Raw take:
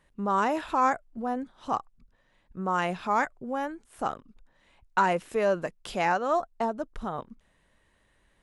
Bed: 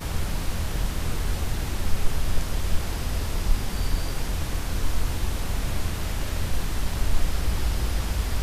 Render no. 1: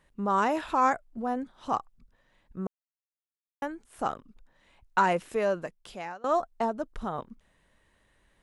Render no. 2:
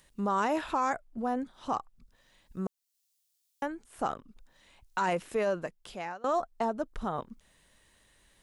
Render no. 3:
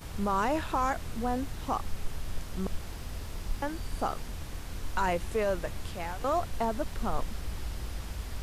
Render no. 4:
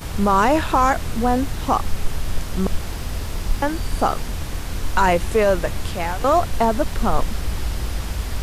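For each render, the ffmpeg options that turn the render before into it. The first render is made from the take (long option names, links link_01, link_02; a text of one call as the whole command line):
ffmpeg -i in.wav -filter_complex "[0:a]asplit=4[link_01][link_02][link_03][link_04];[link_01]atrim=end=2.67,asetpts=PTS-STARTPTS,afade=type=out:start_time=2.666:duration=0.004:curve=hsin[link_05];[link_02]atrim=start=2.67:end=3.62,asetpts=PTS-STARTPTS,volume=0[link_06];[link_03]atrim=start=3.62:end=6.24,asetpts=PTS-STARTPTS,afade=type=in:duration=0.004:curve=hsin,afade=type=out:start_time=1.61:duration=1.01:silence=0.0707946[link_07];[link_04]atrim=start=6.24,asetpts=PTS-STARTPTS,afade=type=in:duration=0.004:curve=hsin:silence=0.0707946[link_08];[link_05][link_06][link_07][link_08]concat=n=4:v=0:a=1" out.wav
ffmpeg -i in.wav -filter_complex "[0:a]acrossover=split=3400[link_01][link_02];[link_01]alimiter=limit=-20.5dB:level=0:latency=1:release=35[link_03];[link_02]acompressor=mode=upward:threshold=-58dB:ratio=2.5[link_04];[link_03][link_04]amix=inputs=2:normalize=0" out.wav
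ffmpeg -i in.wav -i bed.wav -filter_complex "[1:a]volume=-11.5dB[link_01];[0:a][link_01]amix=inputs=2:normalize=0" out.wav
ffmpeg -i in.wav -af "volume=12dB" out.wav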